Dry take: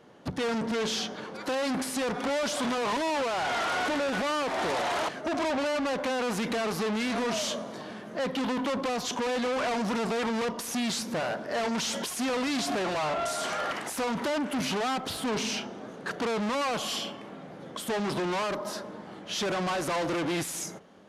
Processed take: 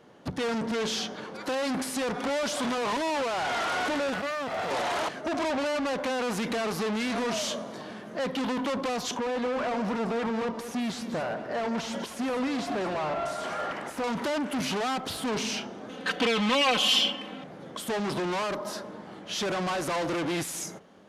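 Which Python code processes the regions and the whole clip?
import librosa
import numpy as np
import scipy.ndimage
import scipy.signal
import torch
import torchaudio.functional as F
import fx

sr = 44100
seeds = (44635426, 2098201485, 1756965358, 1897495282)

y = fx.chain(x, sr, fx.lower_of_two(delay_ms=1.5),
    fx.highpass(hz=91.0, slope=12),
    fx.high_shelf(hz=4200.0, db=-9.0), at=(4.14, 4.71))
y = fx.chain(y, sr, fx.high_shelf(hz=3100.0, db=-11.5),
    fx.echo_single(ms=197, db=-11.0), at=(9.17, 14.04))
y = fx.chain(y, sr, fx.peak_eq(hz=3000.0, db=11.0, octaves=0.96),
    fx.comb(ms=3.9, depth=0.81), at=(15.89, 17.44))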